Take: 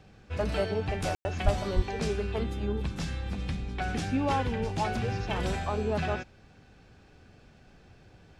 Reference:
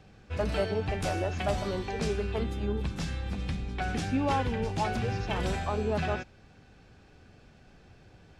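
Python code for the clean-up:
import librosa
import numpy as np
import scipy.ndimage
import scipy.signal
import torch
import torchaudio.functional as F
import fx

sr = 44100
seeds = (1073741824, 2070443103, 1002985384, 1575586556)

y = fx.fix_deplosive(x, sr, at_s=(1.44, 1.75))
y = fx.fix_ambience(y, sr, seeds[0], print_start_s=6.62, print_end_s=7.12, start_s=1.15, end_s=1.25)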